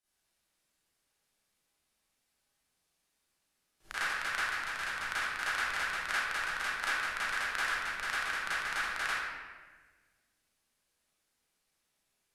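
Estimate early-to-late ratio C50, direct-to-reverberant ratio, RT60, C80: −6.5 dB, −13.0 dB, 1.4 s, −1.5 dB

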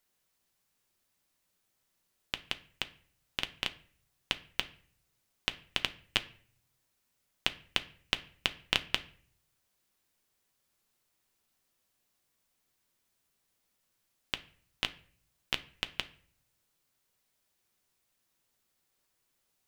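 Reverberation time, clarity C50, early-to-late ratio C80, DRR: 0.50 s, 17.5 dB, 21.5 dB, 9.5 dB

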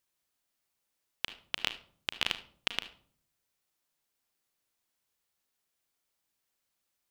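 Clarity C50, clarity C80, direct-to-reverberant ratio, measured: 13.5 dB, 17.5 dB, 10.0 dB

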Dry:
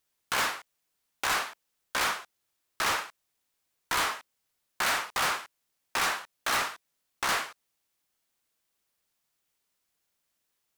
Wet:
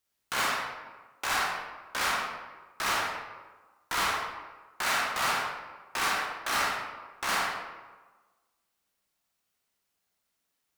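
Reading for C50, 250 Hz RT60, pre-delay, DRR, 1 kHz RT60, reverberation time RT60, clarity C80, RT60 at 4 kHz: 0.5 dB, 1.3 s, 24 ms, −3.0 dB, 1.3 s, 1.3 s, 3.0 dB, 0.75 s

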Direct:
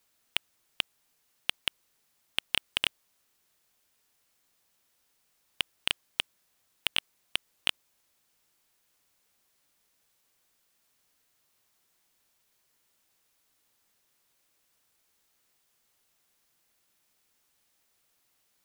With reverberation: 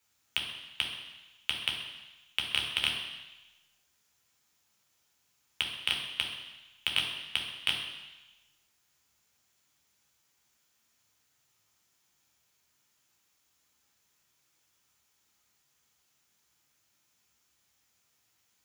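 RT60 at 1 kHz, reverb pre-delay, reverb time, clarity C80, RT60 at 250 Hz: 1.1 s, 3 ms, 1.0 s, 6.5 dB, 0.95 s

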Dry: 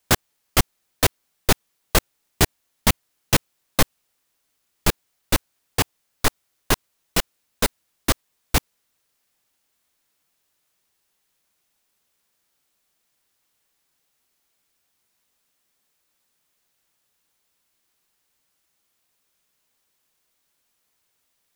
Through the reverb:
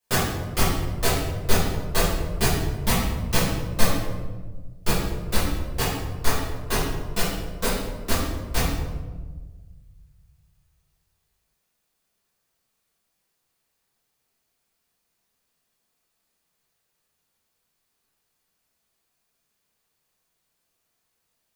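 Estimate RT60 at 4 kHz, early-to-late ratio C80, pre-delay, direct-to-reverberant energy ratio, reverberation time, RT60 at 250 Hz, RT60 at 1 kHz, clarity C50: 0.80 s, 3.0 dB, 6 ms, −11.5 dB, 1.4 s, 1.9 s, 1.2 s, 0.0 dB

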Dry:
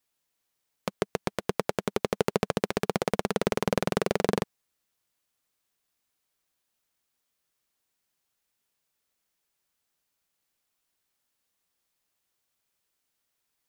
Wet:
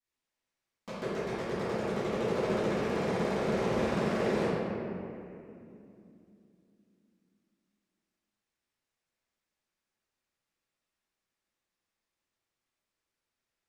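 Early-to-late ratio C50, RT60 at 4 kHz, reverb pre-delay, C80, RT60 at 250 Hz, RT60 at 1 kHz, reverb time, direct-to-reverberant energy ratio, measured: −5.0 dB, 1.6 s, 4 ms, −2.0 dB, 4.1 s, 2.4 s, 2.7 s, −20.0 dB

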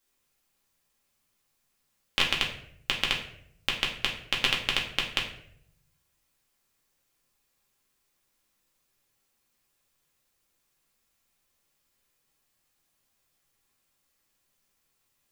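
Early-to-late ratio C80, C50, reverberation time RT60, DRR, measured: 10.5 dB, 7.5 dB, 0.70 s, −2.5 dB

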